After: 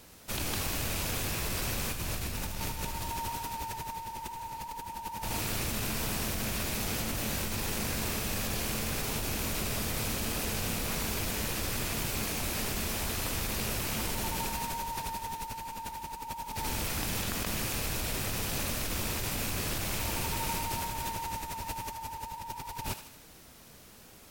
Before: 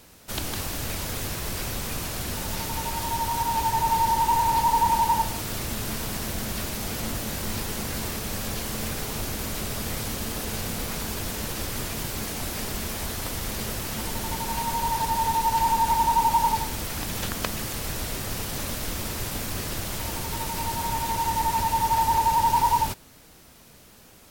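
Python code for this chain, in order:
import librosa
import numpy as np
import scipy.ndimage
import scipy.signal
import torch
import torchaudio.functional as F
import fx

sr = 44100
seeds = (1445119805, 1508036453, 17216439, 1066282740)

y = fx.rattle_buzz(x, sr, strikes_db=-42.0, level_db=-29.0)
y = fx.low_shelf(y, sr, hz=120.0, db=7.0, at=(1.93, 3.1))
y = fx.over_compress(y, sr, threshold_db=-30.0, ratio=-1.0)
y = fx.echo_thinned(y, sr, ms=77, feedback_pct=56, hz=890.0, wet_db=-9.5)
y = y * librosa.db_to_amplitude(-5.0)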